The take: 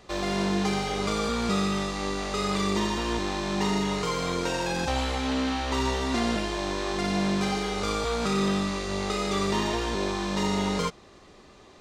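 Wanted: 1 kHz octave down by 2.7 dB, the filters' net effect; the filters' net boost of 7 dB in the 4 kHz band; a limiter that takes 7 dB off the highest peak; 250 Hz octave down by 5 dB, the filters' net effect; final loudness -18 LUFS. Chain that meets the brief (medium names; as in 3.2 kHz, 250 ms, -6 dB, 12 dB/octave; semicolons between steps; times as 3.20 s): peaking EQ 250 Hz -7 dB; peaking EQ 1 kHz -3.5 dB; peaking EQ 4 kHz +8.5 dB; trim +10.5 dB; peak limiter -9 dBFS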